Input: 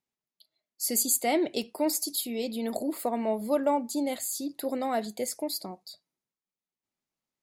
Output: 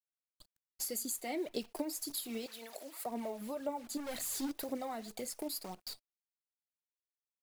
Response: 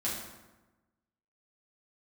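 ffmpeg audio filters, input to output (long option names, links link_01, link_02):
-filter_complex "[0:a]asettb=1/sr,asplit=3[link_01][link_02][link_03];[link_01]atrim=end=3.974[link_04];[link_02]atrim=start=3.97:end=4.63,asetpts=PTS-STARTPTS,afade=type=in:duration=0.004:curve=qsin,afade=type=out:start_time=0.656:duration=0.004:curve=qsin,asoftclip=type=hard:threshold=-35.5dB[link_05];[link_03]atrim=start=4.626[link_06];[link_04][link_05]acrossfade=duration=0.004:curve1=hsin:curve2=qsin[link_07];[link_07][link_06]acrossfade=duration=0.004:curve1=qsin:curve2=hsin,asettb=1/sr,asplit=3[link_08][link_09][link_10];[link_08]atrim=end=5.384[link_11];[link_09]atrim=start=5.38:end=5.89,asetpts=PTS-STARTPTS,afade=type=in:duration=0.004:curve=qsin,afade=type=out:start_time=0.506:duration=0.004:curve=qsin,highshelf=frequency=10000:gain=7[link_12];[link_10]atrim=start=5.886[link_13];[link_11][link_12]acrossfade=duration=0.004:curve1=hsin:curve2=qsin[link_14];[link_14][link_13]acrossfade=duration=0.004:curve1=qsin:curve2=hsin,acrusher=bits=8:dc=4:mix=0:aa=0.000001,acompressor=threshold=-38dB:ratio=6,asettb=1/sr,asplit=3[link_15][link_16][link_17];[link_15]atrim=end=2.464[link_18];[link_16]atrim=start=2.46:end=3.06,asetpts=PTS-STARTPTS,afade=type=in:duration=0.004:curve=qsin,afade=type=out:start_time=0.596:duration=0.004:curve=qsin,highpass=720[link_19];[link_17]atrim=start=3.056[link_20];[link_18][link_19]acrossfade=duration=0.004:curve1=hsin:curve2=qsin[link_21];[link_21][link_20]acrossfade=duration=0.004:curve1=qsin:curve2=hsin,aphaser=in_gain=1:out_gain=1:delay=4.1:decay=0.48:speed=1.9:type=triangular"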